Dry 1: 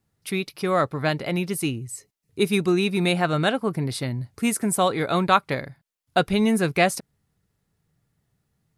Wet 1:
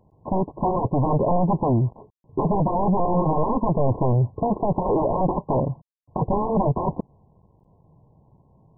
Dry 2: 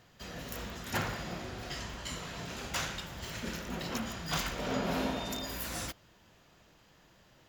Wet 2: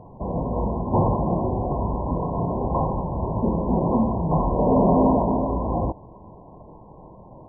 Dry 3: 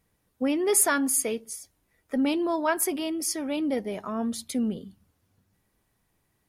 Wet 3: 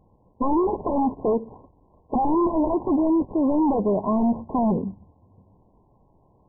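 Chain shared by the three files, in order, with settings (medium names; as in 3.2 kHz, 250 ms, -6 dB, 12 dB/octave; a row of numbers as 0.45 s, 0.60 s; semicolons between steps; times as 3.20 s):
CVSD coder 16 kbps; sine folder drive 18 dB, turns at -9.5 dBFS; brick-wall FIR low-pass 1.1 kHz; normalise loudness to -23 LUFS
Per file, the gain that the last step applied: -6.0 dB, -2.5 dB, -7.0 dB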